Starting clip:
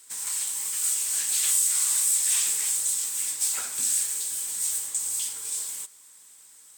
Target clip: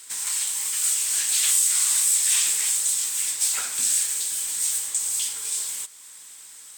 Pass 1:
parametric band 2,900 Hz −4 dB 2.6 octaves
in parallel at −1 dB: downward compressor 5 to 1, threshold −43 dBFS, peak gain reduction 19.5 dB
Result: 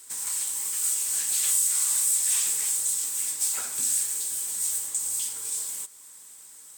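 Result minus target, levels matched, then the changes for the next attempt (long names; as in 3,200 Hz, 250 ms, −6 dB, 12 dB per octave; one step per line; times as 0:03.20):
4,000 Hz band −4.5 dB
change: parametric band 2,900 Hz +5.5 dB 2.6 octaves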